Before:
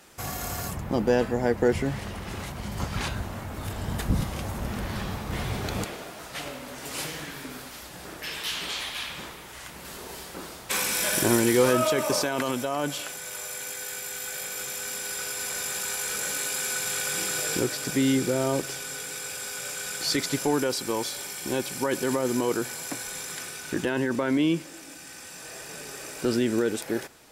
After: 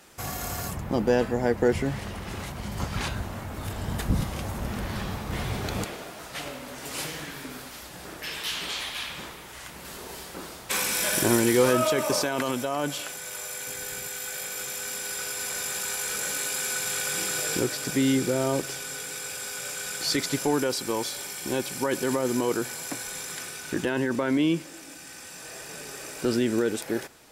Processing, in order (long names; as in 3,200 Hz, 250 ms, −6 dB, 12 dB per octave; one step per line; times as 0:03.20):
0:13.67–0:14.08: low-shelf EQ 240 Hz +11.5 dB